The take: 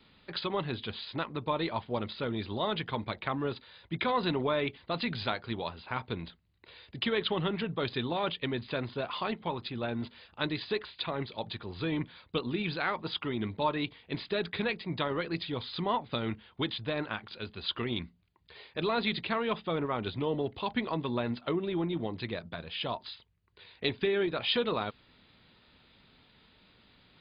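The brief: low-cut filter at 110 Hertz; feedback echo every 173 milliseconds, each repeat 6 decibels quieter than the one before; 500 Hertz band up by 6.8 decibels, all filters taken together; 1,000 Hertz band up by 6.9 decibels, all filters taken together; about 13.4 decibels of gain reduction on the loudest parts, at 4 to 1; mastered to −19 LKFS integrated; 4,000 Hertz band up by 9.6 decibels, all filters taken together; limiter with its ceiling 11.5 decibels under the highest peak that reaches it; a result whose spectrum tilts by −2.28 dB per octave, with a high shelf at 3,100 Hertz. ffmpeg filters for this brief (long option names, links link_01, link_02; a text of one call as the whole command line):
ffmpeg -i in.wav -af "highpass=110,equalizer=frequency=500:width_type=o:gain=7,equalizer=frequency=1000:width_type=o:gain=5.5,highshelf=frequency=3100:gain=3,equalizer=frequency=4000:width_type=o:gain=9,acompressor=threshold=-34dB:ratio=4,alimiter=level_in=3dB:limit=-24dB:level=0:latency=1,volume=-3dB,aecho=1:1:173|346|519|692|865|1038:0.501|0.251|0.125|0.0626|0.0313|0.0157,volume=18.5dB" out.wav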